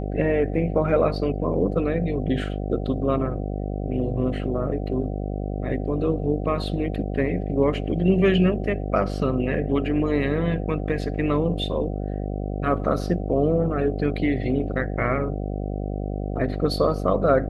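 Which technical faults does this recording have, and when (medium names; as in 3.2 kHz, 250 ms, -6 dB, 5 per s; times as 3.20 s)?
buzz 50 Hz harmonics 15 -28 dBFS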